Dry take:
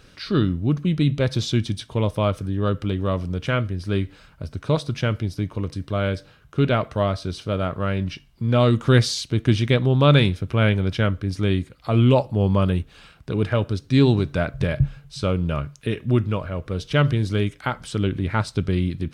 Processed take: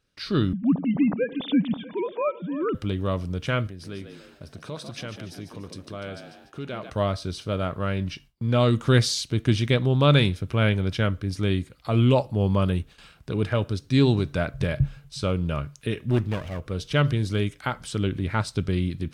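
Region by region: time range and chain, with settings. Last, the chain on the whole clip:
0.53–2.75 sine-wave speech + split-band echo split 440 Hz, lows 96 ms, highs 0.32 s, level -15 dB
3.67–6.9 compressor 2.5:1, threshold -30 dBFS + low shelf 100 Hz -11.5 dB + frequency-shifting echo 0.146 s, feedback 42%, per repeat +66 Hz, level -8.5 dB
16.1–16.6 minimum comb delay 0.33 ms + short-mantissa float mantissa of 8-bit
whole clip: high shelf 4700 Hz +5 dB; gate with hold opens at -37 dBFS; gain -3 dB

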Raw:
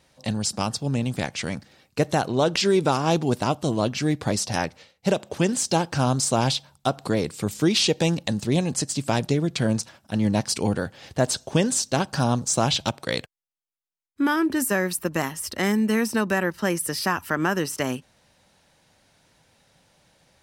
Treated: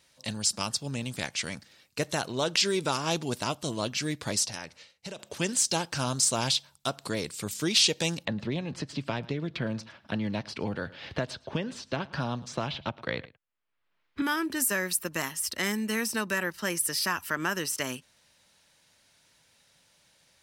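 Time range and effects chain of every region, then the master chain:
4.46–5.19 LPF 11000 Hz + notch 3400 Hz, Q 27 + compressor 4:1, threshold -29 dBFS
8.25–14.22 air absorption 350 m + echo 0.109 s -22.5 dB + three-band squash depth 100%
whole clip: tilt shelf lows -5.5 dB, about 1300 Hz; notch 770 Hz, Q 12; gain -4.5 dB

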